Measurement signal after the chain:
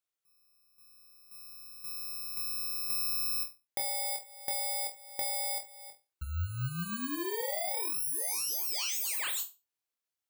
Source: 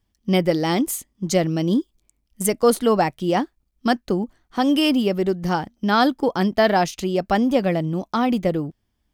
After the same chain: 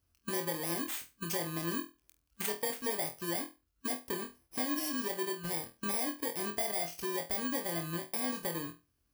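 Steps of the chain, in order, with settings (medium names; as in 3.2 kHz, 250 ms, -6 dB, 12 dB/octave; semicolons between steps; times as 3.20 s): bit-reversed sample order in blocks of 32 samples; high-pass 61 Hz; peaking EQ 200 Hz -11 dB 0.53 oct; compression 3:1, threshold -34 dBFS; flutter echo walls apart 4.1 m, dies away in 0.26 s; trim -3.5 dB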